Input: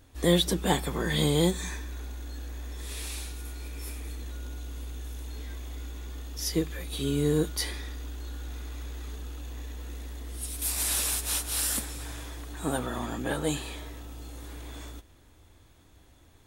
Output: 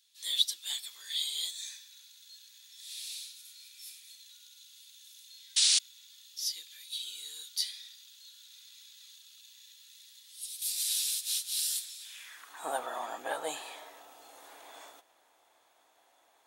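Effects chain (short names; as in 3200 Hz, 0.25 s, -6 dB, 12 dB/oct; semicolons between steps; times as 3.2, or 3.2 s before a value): painted sound noise, 5.56–5.79, 230–10000 Hz -22 dBFS; high-pass sweep 3900 Hz -> 720 Hz, 12.01–12.67; gain -5 dB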